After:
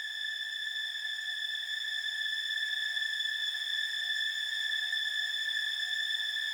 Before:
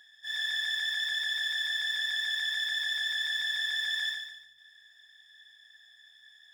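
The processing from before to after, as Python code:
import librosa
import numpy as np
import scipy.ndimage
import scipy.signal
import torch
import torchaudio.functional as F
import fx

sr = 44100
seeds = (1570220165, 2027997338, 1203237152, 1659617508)

y = fx.fade_in_head(x, sr, length_s=1.55)
y = fx.paulstretch(y, sr, seeds[0], factor=6.3, window_s=0.25, from_s=0.93)
y = y * 10.0 ** (-1.5 / 20.0)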